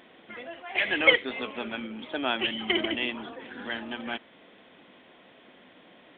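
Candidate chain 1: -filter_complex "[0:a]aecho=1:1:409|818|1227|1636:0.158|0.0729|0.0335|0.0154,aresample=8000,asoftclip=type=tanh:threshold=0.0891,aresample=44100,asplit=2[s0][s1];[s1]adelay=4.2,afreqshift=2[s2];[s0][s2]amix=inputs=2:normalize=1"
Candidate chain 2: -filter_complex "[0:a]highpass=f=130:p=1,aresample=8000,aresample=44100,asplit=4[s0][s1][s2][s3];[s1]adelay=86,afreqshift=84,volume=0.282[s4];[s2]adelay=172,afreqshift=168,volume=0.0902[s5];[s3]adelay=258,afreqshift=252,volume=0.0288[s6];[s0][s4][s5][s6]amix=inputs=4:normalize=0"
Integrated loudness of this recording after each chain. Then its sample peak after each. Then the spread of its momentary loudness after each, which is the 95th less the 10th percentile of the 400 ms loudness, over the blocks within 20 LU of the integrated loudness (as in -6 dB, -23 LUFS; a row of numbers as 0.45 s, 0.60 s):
-34.5 LUFS, -27.5 LUFS; -16.5 dBFS, -4.0 dBFS; 18 LU, 20 LU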